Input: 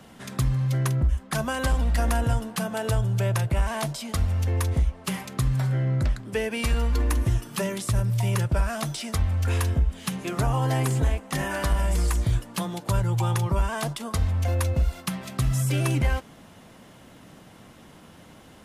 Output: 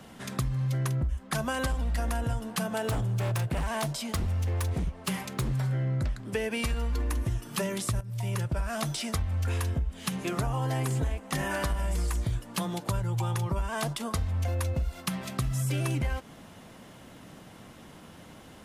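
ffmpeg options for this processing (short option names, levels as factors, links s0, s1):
-filter_complex "[0:a]asettb=1/sr,asplit=3[s0][s1][s2];[s0]atrim=end=2.634[s3];[s1]atrim=start=2.63:end=5.6,asetpts=PTS-STARTPTS,afade=t=in:d=0.004:c=qsin,afade=t=out:st=2.966:d=0.004:c=qsin,aeval=exprs='0.1*(abs(mod(val(0)/0.1+3,4)-2)-1)':c=same[s4];[s2]atrim=start=5.596[s5];[s3][s4]acrossfade=d=0.004:c1=hsin:c2=qsin[s6];[s6][s5]acrossfade=d=0.004:c1=qsin:c2=hsin,asplit=2[s7][s8];[s7]atrim=end=8.01,asetpts=PTS-STARTPTS,afade=t=out:st=8.006:d=0.004:c=hsin:silence=0.199526[s9];[s8]atrim=start=8.01,asetpts=PTS-STARTPTS,afade=t=in:d=0.72:silence=0.199526[s10];[s9][s10]concat=n=2:v=0:a=1,acompressor=threshold=0.0501:ratio=6"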